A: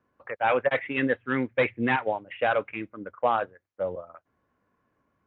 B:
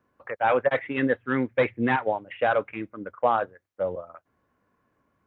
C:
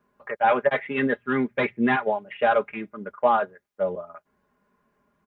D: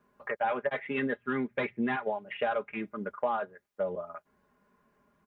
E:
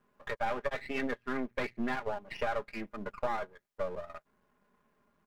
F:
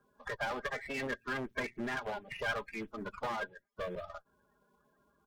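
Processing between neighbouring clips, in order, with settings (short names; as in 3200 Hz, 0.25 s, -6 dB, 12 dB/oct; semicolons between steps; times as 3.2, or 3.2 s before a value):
dynamic EQ 2600 Hz, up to -6 dB, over -43 dBFS, Q 1.6; gain +2 dB
comb 4.9 ms, depth 79%
compressor 3:1, threshold -30 dBFS, peak gain reduction 11.5 dB
half-wave gain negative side -12 dB
bin magnitudes rounded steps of 30 dB; small resonant body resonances 1600/3400 Hz, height 9 dB; one-sided clip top -33 dBFS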